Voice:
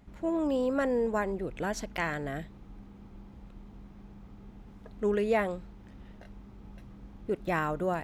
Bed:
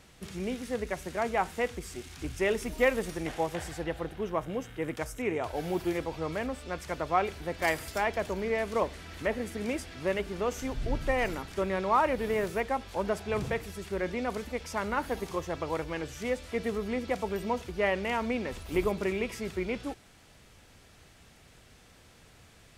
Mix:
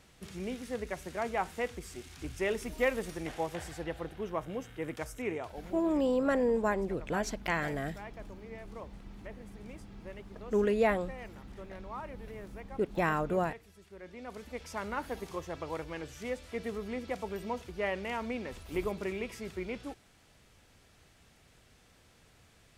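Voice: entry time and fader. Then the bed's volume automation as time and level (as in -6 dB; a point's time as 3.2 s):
5.50 s, 0.0 dB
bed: 5.31 s -4 dB
5.81 s -17.5 dB
13.98 s -17.5 dB
14.6 s -5.5 dB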